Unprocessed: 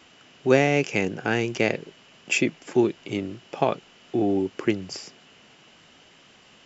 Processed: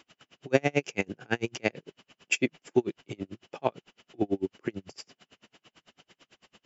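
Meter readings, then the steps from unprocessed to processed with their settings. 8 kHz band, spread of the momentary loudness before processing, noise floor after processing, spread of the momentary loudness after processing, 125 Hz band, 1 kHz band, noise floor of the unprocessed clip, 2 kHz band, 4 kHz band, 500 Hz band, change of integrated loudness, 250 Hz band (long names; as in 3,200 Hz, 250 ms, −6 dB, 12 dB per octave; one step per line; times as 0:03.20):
can't be measured, 14 LU, below −85 dBFS, 18 LU, −7.0 dB, −7.5 dB, −54 dBFS, −6.0 dB, −6.0 dB, −6.5 dB, −6.0 dB, −7.5 dB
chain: tremolo with a sine in dB 9 Hz, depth 38 dB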